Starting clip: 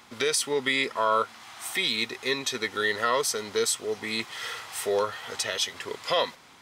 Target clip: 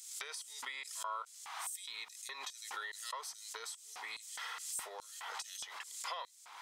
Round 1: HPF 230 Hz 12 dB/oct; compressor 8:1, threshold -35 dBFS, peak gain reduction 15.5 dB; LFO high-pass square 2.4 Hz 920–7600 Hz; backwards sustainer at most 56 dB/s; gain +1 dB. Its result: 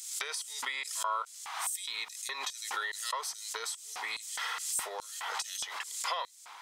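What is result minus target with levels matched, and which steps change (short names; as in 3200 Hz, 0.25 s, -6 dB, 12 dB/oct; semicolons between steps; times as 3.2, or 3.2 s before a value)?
compressor: peak gain reduction -8 dB
change: compressor 8:1, threshold -44 dBFS, peak gain reduction 23.5 dB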